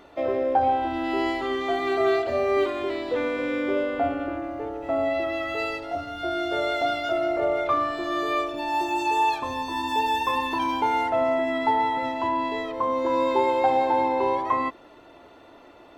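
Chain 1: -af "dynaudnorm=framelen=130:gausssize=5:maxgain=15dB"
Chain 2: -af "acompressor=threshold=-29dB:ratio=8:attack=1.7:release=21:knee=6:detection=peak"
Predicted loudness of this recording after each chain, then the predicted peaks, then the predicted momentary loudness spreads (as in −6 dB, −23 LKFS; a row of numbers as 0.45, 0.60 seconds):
−13.5, −32.0 LKFS; −1.0, −22.0 dBFS; 5, 3 LU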